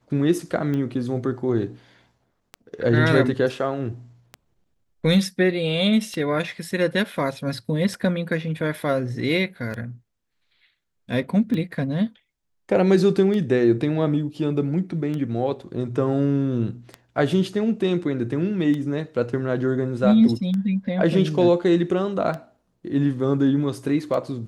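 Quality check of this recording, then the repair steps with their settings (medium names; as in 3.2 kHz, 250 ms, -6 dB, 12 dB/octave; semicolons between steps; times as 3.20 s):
tick 33 1/3 rpm -18 dBFS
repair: de-click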